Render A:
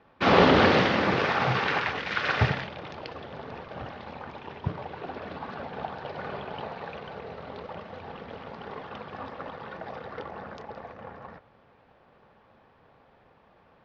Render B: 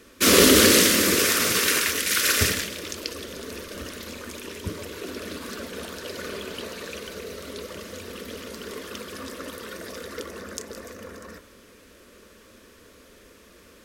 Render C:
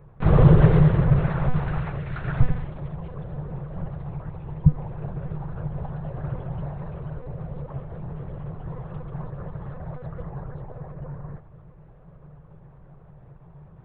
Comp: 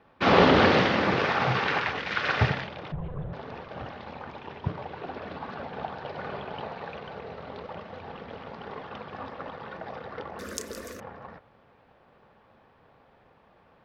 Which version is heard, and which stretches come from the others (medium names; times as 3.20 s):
A
2.92–3.33 s: from C
10.39–11.00 s: from B